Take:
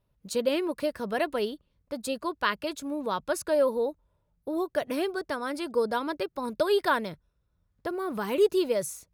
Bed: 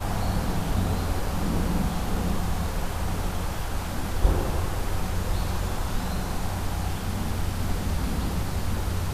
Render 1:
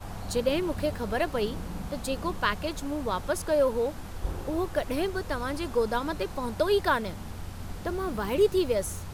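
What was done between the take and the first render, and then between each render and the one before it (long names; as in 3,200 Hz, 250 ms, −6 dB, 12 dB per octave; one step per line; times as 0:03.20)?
mix in bed −11 dB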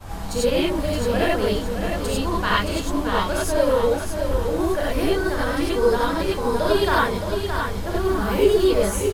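repeating echo 619 ms, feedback 36%, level −6.5 dB
reverb whose tail is shaped and stops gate 120 ms rising, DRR −6 dB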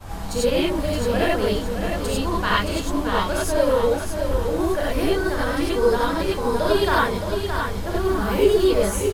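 no processing that can be heard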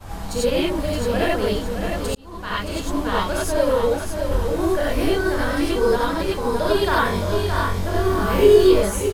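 0:02.15–0:02.91: fade in
0:04.29–0:05.96: double-tracking delay 24 ms −6 dB
0:07.03–0:08.81: flutter between parallel walls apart 3.7 metres, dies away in 0.35 s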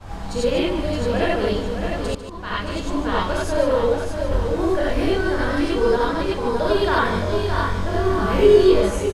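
high-frequency loss of the air 59 metres
on a send: single-tap delay 147 ms −10.5 dB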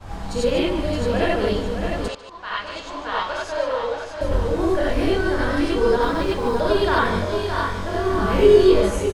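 0:02.08–0:04.21: three-way crossover with the lows and the highs turned down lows −17 dB, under 540 Hz, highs −19 dB, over 6,800 Hz
0:06.02–0:06.61: mu-law and A-law mismatch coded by mu
0:07.25–0:08.14: low-shelf EQ 210 Hz −6.5 dB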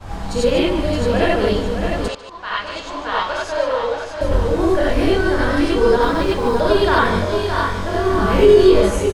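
level +4 dB
brickwall limiter −2 dBFS, peak gain reduction 3 dB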